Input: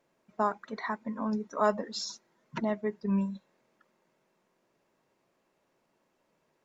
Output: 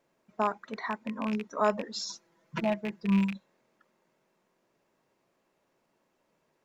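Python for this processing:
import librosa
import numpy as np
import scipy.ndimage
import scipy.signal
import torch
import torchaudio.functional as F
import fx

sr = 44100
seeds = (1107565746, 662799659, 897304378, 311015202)

y = fx.rattle_buzz(x, sr, strikes_db=-37.0, level_db=-27.0)
y = fx.comb(y, sr, ms=6.0, depth=0.73, at=(2.08, 3.32))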